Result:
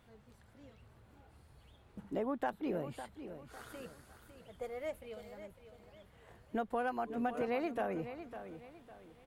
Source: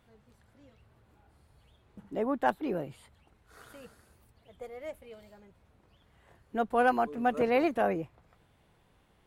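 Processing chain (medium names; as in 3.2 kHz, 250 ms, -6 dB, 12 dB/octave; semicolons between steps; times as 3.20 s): compression 6:1, threshold -34 dBFS, peak gain reduction 13.5 dB; on a send: feedback delay 554 ms, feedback 35%, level -11 dB; on the sum: trim +1 dB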